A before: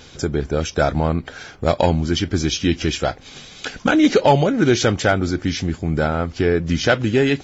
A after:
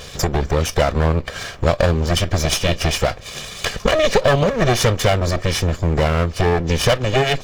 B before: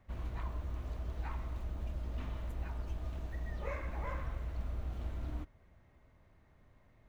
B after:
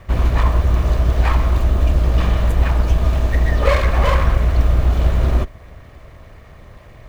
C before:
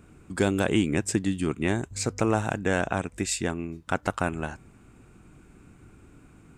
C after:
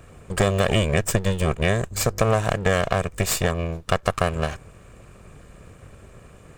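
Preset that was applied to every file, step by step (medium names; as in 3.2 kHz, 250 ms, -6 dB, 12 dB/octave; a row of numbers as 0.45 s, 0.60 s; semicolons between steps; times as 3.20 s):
comb filter that takes the minimum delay 1.7 ms; compression 2:1, threshold -27 dBFS; peak normalisation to -2 dBFS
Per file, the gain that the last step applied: +9.5 dB, +25.0 dB, +8.5 dB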